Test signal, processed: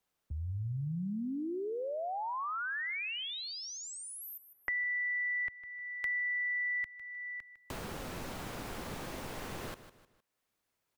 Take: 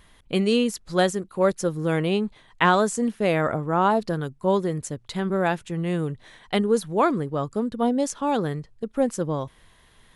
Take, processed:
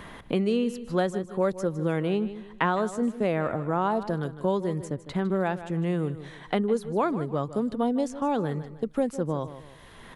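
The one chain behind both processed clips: treble shelf 2.5 kHz -9 dB; on a send: feedback delay 154 ms, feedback 25%, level -15.5 dB; on the sum: three bands compressed up and down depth 70%; trim -3.5 dB

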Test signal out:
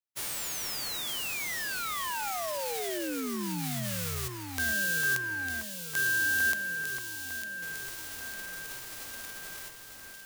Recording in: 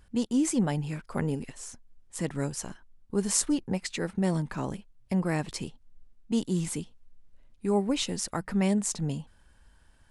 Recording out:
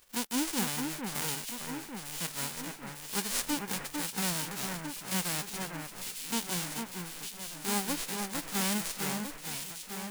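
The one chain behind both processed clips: formants flattened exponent 0.1; echo whose repeats swap between lows and highs 451 ms, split 2.3 kHz, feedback 78%, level -4.5 dB; trim -6 dB

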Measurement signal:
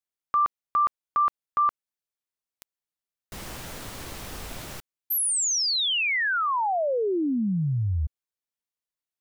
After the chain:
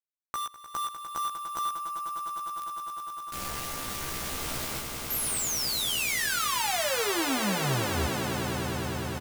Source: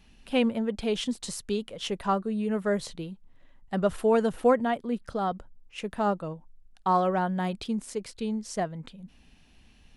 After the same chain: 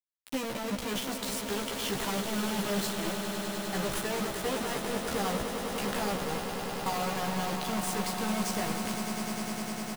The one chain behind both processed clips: transient shaper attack -3 dB, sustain +12 dB; compression 16:1, threshold -34 dBFS; bit crusher 6-bit; doubling 15 ms -3 dB; on a send: echo with a slow build-up 101 ms, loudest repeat 8, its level -11 dB

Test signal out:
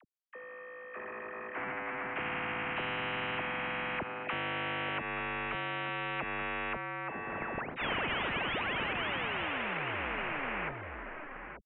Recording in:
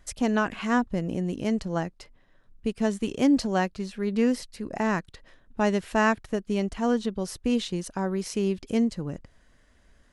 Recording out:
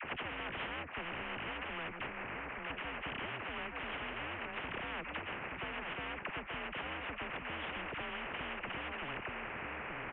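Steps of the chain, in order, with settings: CVSD coder 16 kbps; compression, threshold -34 dBFS; peak limiter -31 dBFS; phase dispersion lows, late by 45 ms, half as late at 830 Hz; on a send: delay 878 ms -14.5 dB; on the sum: mistuned SSB -160 Hz 350–2400 Hz; spectrum-flattening compressor 10:1; trim +7 dB

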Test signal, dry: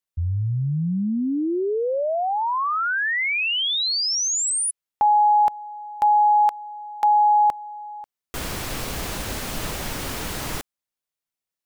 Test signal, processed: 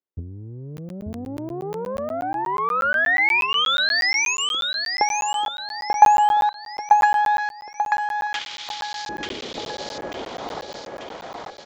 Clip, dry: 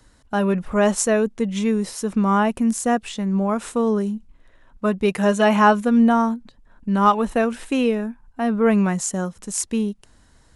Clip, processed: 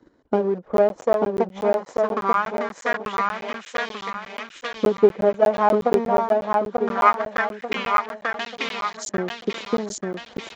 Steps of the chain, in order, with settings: single-diode clipper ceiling -18.5 dBFS; in parallel at -9 dB: integer overflow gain 20.5 dB; on the sum: transient shaper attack +11 dB, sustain -6 dB; LFO band-pass saw up 0.22 Hz 330–4500 Hz; reverse; upward compressor, threshold -40 dBFS; reverse; band-stop 2.7 kHz, Q 13; feedback delay 889 ms, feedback 40%, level -3 dB; resampled via 16 kHz; crackling interface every 0.12 s, samples 512, zero, from 0.77 s; tape noise reduction on one side only encoder only; trim +3.5 dB

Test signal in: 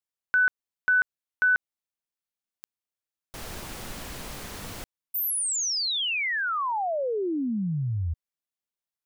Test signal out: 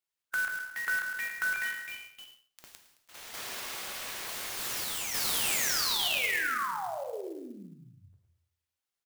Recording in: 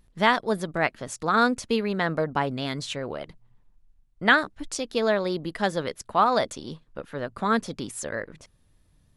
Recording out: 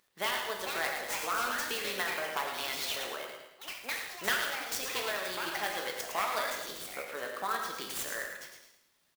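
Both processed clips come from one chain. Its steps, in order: one-sided wavefolder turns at -16 dBFS; high-pass 420 Hz 6 dB/octave; tilt EQ +4 dB/octave; harmonic-percussive split harmonic -6 dB; treble shelf 4.2 kHz -11 dB; compression 2:1, threshold -38 dBFS; feedback delay 109 ms, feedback 39%, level -7.5 dB; gated-style reverb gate 320 ms falling, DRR 1.5 dB; ever faster or slower copies 492 ms, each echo +4 st, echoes 3, each echo -6 dB; sampling jitter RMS 0.024 ms

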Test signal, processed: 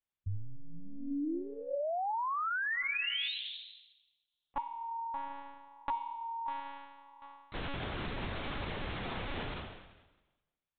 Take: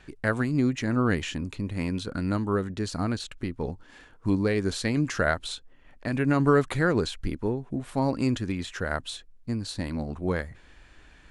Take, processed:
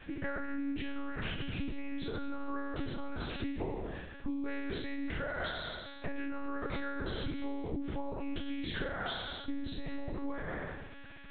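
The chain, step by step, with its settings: spectral sustain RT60 1.13 s; peak limiter -17 dBFS; compression 12:1, threshold -32 dBFS; monotone LPC vocoder at 8 kHz 280 Hz

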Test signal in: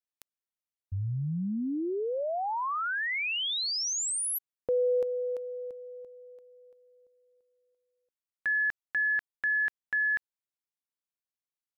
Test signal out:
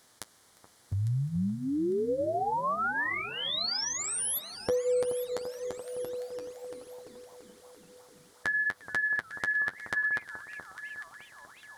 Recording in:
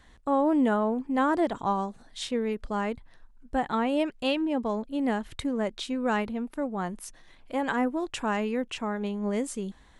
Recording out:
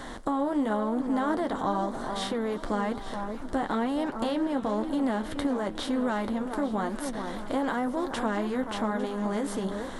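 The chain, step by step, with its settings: spectral levelling over time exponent 0.6; in parallel at -0.5 dB: peak limiter -17.5 dBFS; on the sum: dynamic bell 7.1 kHz, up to -6 dB, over -45 dBFS, Q 1.7; on a send: echo whose repeats swap between lows and highs 426 ms, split 1.4 kHz, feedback 58%, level -9.5 dB; on the sum: compression 2:1, threshold -25 dBFS; flange 0.99 Hz, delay 7.3 ms, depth 4 ms, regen -35%; crackle 65 per s -58 dBFS; peaking EQ 2.6 kHz -14 dB 0.29 oct; modulated delay 357 ms, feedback 79%, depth 210 cents, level -23 dB

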